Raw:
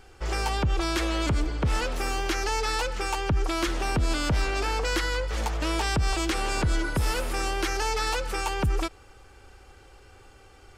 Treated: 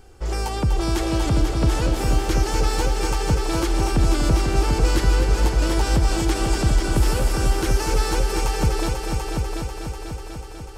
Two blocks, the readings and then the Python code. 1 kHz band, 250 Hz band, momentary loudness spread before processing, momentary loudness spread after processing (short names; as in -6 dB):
+2.5 dB, +7.0 dB, 3 LU, 8 LU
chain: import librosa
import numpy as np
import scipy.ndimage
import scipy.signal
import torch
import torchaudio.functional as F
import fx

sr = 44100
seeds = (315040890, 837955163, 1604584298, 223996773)

p1 = fx.peak_eq(x, sr, hz=2100.0, db=-9.0, octaves=2.7)
p2 = p1 + fx.echo_heads(p1, sr, ms=246, heads='all three', feedback_pct=61, wet_db=-8.0, dry=0)
y = p2 * librosa.db_to_amplitude(5.0)